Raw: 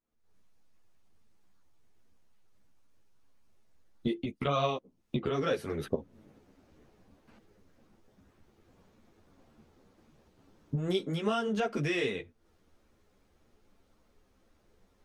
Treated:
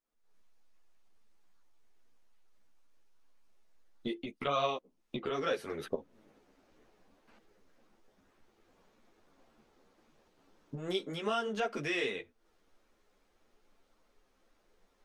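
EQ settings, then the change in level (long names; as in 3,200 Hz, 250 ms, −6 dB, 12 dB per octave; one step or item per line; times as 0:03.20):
parametric band 92 Hz −14 dB 2.8 octaves
high-shelf EQ 8,600 Hz −4.5 dB
0.0 dB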